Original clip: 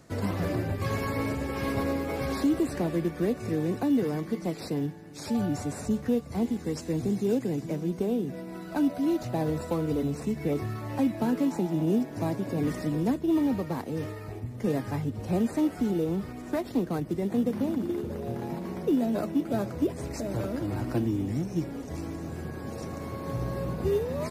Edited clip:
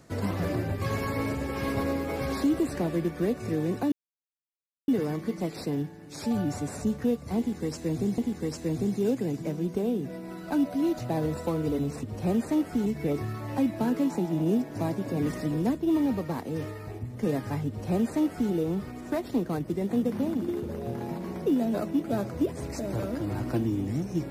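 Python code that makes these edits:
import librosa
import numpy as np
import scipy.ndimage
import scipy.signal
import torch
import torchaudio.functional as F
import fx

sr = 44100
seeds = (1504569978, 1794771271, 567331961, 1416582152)

y = fx.edit(x, sr, fx.insert_silence(at_s=3.92, length_s=0.96),
    fx.repeat(start_s=6.42, length_s=0.8, count=2),
    fx.duplicate(start_s=15.09, length_s=0.83, to_s=10.27), tone=tone)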